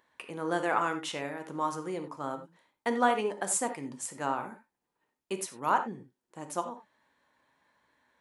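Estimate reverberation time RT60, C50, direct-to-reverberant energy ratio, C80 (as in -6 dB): not exponential, 9.5 dB, 6.0 dB, 14.0 dB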